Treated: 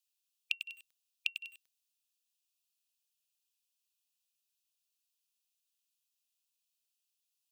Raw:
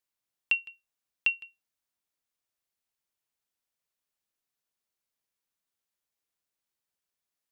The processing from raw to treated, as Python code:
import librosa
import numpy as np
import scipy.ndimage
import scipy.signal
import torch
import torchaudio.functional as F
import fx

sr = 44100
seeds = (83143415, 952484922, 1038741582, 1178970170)

y = fx.gate_flip(x, sr, shuts_db=-27.0, range_db=-28)
y = fx.brickwall_highpass(y, sr, low_hz=2400.0)
y = fx.echo_crushed(y, sr, ms=98, feedback_pct=35, bits=9, wet_db=-8)
y = F.gain(torch.from_numpy(y), 3.5).numpy()